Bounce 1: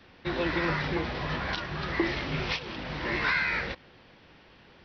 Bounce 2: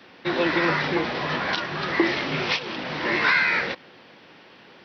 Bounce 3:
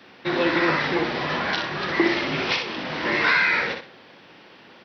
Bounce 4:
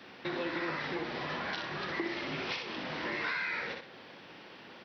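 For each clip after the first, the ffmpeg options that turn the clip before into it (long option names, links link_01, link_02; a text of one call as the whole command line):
ffmpeg -i in.wav -af "highpass=200,volume=7dB" out.wav
ffmpeg -i in.wav -af "aecho=1:1:62|124|186:0.501|0.13|0.0339" out.wav
ffmpeg -i in.wav -af "acompressor=threshold=-36dB:ratio=2.5,volume=-2.5dB" out.wav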